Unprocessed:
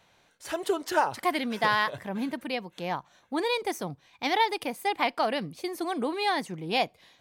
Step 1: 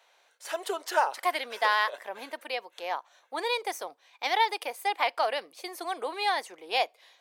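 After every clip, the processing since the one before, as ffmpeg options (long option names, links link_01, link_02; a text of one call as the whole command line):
ffmpeg -i in.wav -af "highpass=frequency=470:width=0.5412,highpass=frequency=470:width=1.3066" out.wav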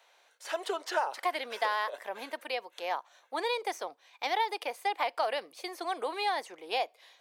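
ffmpeg -i in.wav -filter_complex "[0:a]acrossover=split=890|6500[link_01][link_02][link_03];[link_01]acompressor=threshold=-29dB:ratio=4[link_04];[link_02]acompressor=threshold=-33dB:ratio=4[link_05];[link_03]acompressor=threshold=-55dB:ratio=4[link_06];[link_04][link_05][link_06]amix=inputs=3:normalize=0" out.wav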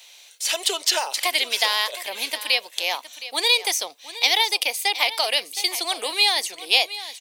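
ffmpeg -i in.wav -af "aexciter=amount=8.1:drive=3.1:freq=2200,aecho=1:1:716:0.188,volume=3dB" out.wav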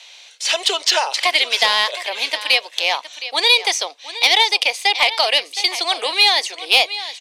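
ffmpeg -i in.wav -af "highpass=410,lowpass=5400,acontrast=84" out.wav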